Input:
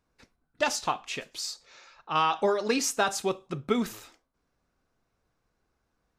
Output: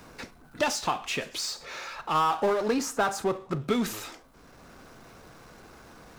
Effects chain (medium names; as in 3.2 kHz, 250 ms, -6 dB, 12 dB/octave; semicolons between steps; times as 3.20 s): 2.14–3.61 s: resonant high shelf 1.9 kHz -8.5 dB, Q 1.5; power-law waveshaper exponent 0.7; three bands compressed up and down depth 40%; trim -2.5 dB